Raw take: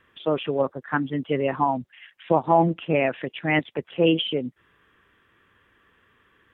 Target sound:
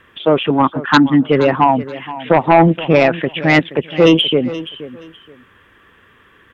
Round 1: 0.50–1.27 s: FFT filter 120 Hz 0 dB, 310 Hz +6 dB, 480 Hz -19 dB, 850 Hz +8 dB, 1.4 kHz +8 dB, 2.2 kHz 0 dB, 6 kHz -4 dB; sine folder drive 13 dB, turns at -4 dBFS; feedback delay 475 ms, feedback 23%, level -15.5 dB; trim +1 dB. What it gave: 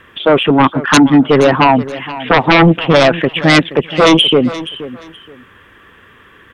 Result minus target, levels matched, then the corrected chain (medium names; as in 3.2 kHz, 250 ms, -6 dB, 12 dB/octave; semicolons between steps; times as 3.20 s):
sine folder: distortion +11 dB
0.50–1.27 s: FFT filter 120 Hz 0 dB, 310 Hz +6 dB, 480 Hz -19 dB, 850 Hz +8 dB, 1.4 kHz +8 dB, 2.2 kHz 0 dB, 6 kHz -4 dB; sine folder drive 7 dB, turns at -4 dBFS; feedback delay 475 ms, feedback 23%, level -15.5 dB; trim +1 dB